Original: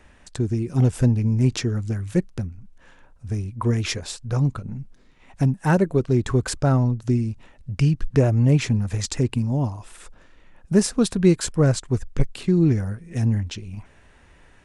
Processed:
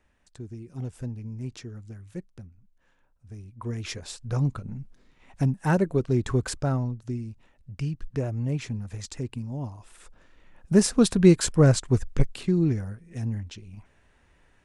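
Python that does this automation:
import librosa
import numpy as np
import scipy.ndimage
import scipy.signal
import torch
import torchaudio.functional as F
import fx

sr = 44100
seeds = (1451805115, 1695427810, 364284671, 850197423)

y = fx.gain(x, sr, db=fx.line((3.32, -16.0), (4.26, -4.0), (6.44, -4.0), (7.07, -11.0), (9.52, -11.0), (10.98, 0.5), (12.03, 0.5), (13.05, -9.0)))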